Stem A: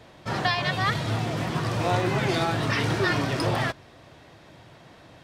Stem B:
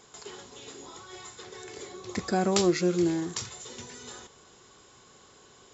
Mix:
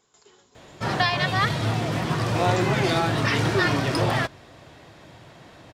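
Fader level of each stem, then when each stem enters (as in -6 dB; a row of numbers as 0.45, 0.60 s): +2.5, -11.5 dB; 0.55, 0.00 s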